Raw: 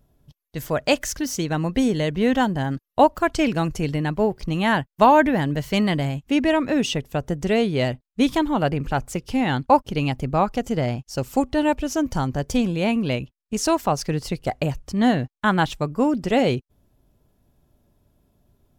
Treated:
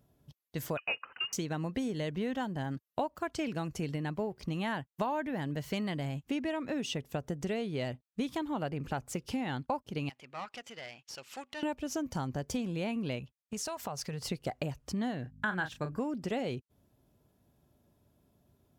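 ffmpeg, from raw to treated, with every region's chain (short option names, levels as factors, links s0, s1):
-filter_complex "[0:a]asettb=1/sr,asplit=3[s0][s1][s2];[s0]atrim=end=0.774[s3];[s1]atrim=start=0.77:end=1.33,asetpts=PTS-STARTPTS,afade=t=in:d=0.004:c=qsin,afade=t=out:st=0.556:d=0.004:c=qsin,highpass=250,lowpass=f=2600:t=q:w=0.5098,lowpass=f=2600:t=q:w=0.6013,lowpass=f=2600:t=q:w=0.9,lowpass=f=2600:t=q:w=2.563,afreqshift=-3100[s4];[s2]atrim=start=1.326[s5];[s3][s4]acrossfade=d=0.004:c1=hsin:c2=qsin[s6];[s6][s5]acrossfade=d=0.004:c1=qsin:c2=hsin,asettb=1/sr,asplit=3[s7][s8][s9];[s7]atrim=end=10.094[s10];[s8]atrim=start=10.09:end=11.63,asetpts=PTS-STARTPTS,afade=t=in:d=0.004:c=qsin,afade=t=out:st=1.536:d=0.004:c=qsin,acompressor=mode=upward:threshold=0.0891:ratio=2.5:attack=3.2:release=140:knee=2.83:detection=peak,bandpass=f=2600:t=q:w=1.2,aeval=exprs='(tanh(28.2*val(0)+0.6)-tanh(0.6))/28.2':c=same[s11];[s9]atrim=start=11.626[s12];[s10][s11]acrossfade=d=0.004:c1=hsin:c2=qsin[s13];[s13][s12]acrossfade=d=0.004:c1=qsin:c2=hsin,asettb=1/sr,asplit=3[s14][s15][s16];[s14]atrim=end=13.194[s17];[s15]atrim=start=13.19:end=14.26,asetpts=PTS-STARTPTS,afade=t=in:d=0.004:c=qsin,afade=t=out:st=1.066:d=0.004:c=qsin,equalizer=f=310:t=o:w=0.46:g=-13,acompressor=threshold=0.0355:ratio=6:attack=3.2:release=140:knee=1:detection=peak[s18];[s16]atrim=start=14.256[s19];[s17][s18]acrossfade=d=0.004:c1=hsin:c2=qsin[s20];[s20][s19]acrossfade=d=0.004:c1=qsin:c2=hsin,asettb=1/sr,asplit=3[s21][s22][s23];[s21]atrim=end=15.224[s24];[s22]atrim=start=15.22:end=15.99,asetpts=PTS-STARTPTS,afade=t=in:d=0.004:c=qsin,afade=t=out:st=0.766:d=0.004:c=qsin,aeval=exprs='val(0)+0.00708*(sin(2*PI*50*n/s)+sin(2*PI*2*50*n/s)/2+sin(2*PI*3*50*n/s)/3+sin(2*PI*4*50*n/s)/4+sin(2*PI*5*50*n/s)/5)':c=same,equalizer=f=1600:w=5.8:g=14,asplit=2[s25][s26];[s26]adelay=33,volume=0.355[s27];[s25][s27]amix=inputs=2:normalize=0,atrim=end_sample=33957[s28];[s23]atrim=start=15.986[s29];[s24][s28]acrossfade=d=0.004:c1=hsin:c2=qsin[s30];[s30][s29]acrossfade=d=0.004:c1=qsin:c2=hsin,highpass=79,acompressor=threshold=0.0398:ratio=5,volume=0.631"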